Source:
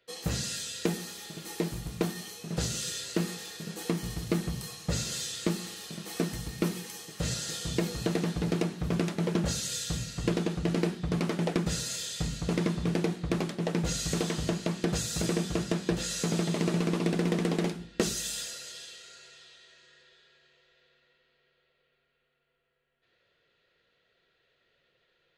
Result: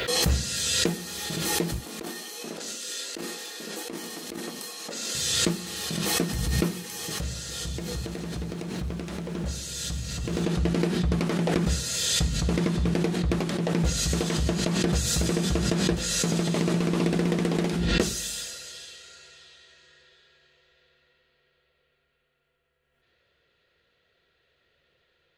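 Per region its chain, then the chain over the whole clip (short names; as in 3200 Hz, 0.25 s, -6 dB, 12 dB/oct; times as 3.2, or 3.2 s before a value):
1.8–5.15 Chebyshev high-pass 240 Hz, order 4 + negative-ratio compressor -38 dBFS, ratio -0.5
6.88–10.44 compressor 3:1, threshold -36 dBFS + lo-fi delay 0.134 s, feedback 80%, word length 10-bit, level -14.5 dB
whole clip: bell 71 Hz +12 dB 0.54 oct; backwards sustainer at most 25 dB/s; gain +2 dB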